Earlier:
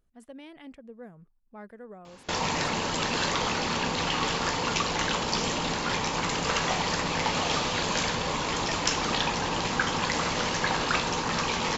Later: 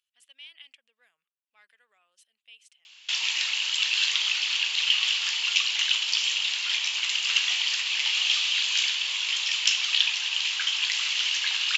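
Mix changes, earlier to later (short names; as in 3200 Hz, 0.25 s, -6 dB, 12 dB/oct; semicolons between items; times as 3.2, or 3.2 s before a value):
background: entry +0.80 s; master: add resonant high-pass 2900 Hz, resonance Q 3.8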